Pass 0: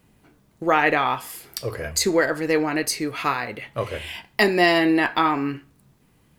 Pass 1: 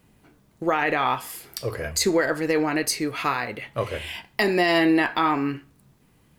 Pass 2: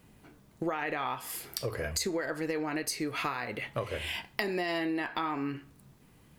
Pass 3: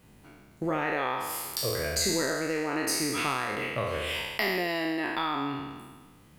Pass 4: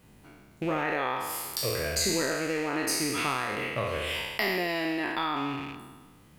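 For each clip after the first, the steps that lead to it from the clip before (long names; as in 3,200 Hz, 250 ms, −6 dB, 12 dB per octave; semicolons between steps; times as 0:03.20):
brickwall limiter −11 dBFS, peak gain reduction 7 dB
downward compressor 6 to 1, threshold −30 dBFS, peak gain reduction 13.5 dB
peak hold with a decay on every bin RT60 1.47 s
loose part that buzzes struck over −42 dBFS, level −31 dBFS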